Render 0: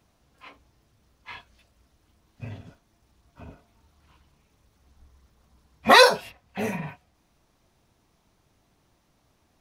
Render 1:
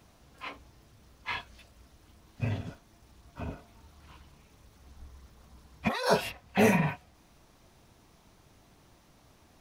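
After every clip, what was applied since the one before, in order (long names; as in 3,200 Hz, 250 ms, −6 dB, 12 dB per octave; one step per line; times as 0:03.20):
compressor whose output falls as the input rises −26 dBFS, ratio −1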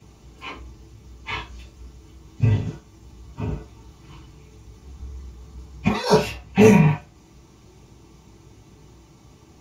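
convolution reverb RT60 0.25 s, pre-delay 3 ms, DRR −5.5 dB
level −5.5 dB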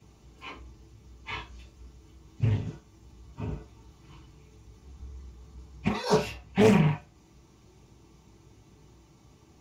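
highs frequency-modulated by the lows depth 0.32 ms
level −7 dB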